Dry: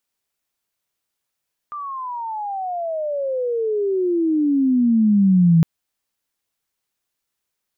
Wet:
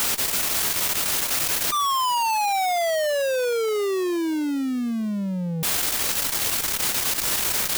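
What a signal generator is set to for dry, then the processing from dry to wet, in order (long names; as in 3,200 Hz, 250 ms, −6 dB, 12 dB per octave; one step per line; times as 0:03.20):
glide logarithmic 1,200 Hz → 160 Hz −27 dBFS → −9.5 dBFS 3.91 s
sign of each sample alone
saturating transformer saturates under 220 Hz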